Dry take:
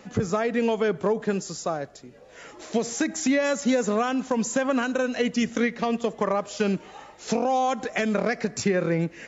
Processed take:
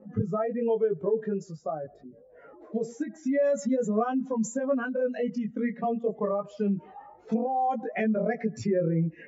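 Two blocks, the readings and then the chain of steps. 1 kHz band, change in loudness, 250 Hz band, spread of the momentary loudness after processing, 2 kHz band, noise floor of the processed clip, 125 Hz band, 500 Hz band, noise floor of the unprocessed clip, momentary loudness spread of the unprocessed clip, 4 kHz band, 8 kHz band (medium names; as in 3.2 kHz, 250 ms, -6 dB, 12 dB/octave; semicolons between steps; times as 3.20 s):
-4.0 dB, -3.5 dB, -3.0 dB, 8 LU, -10.0 dB, -54 dBFS, -1.0 dB, -2.5 dB, -49 dBFS, 7 LU, under -15 dB, no reading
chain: spectral contrast enhancement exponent 2; chorus voices 2, 0.25 Hz, delay 19 ms, depth 1.2 ms; level-controlled noise filter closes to 870 Hz, open at -21.5 dBFS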